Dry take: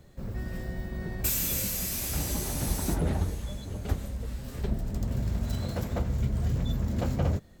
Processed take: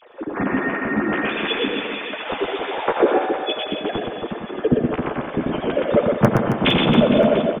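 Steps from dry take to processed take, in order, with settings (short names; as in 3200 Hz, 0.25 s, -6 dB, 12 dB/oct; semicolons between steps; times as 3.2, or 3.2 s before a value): sine-wave speech; low shelf 210 Hz +4.5 dB; thinning echo 87 ms, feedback 53%, high-pass 210 Hz, level -9 dB; flange 0.49 Hz, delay 7.8 ms, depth 6.4 ms, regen +5%; dynamic EQ 470 Hz, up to +4 dB, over -36 dBFS, Q 3.7; in parallel at -9 dB: wrapped overs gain 11 dB; on the sum: notch 1900 Hz, Q 21; harmoniser -5 st -9 dB; on a send: reverse bouncing-ball echo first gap 0.12 s, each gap 1.25×, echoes 5; on the sum: gain +5 dB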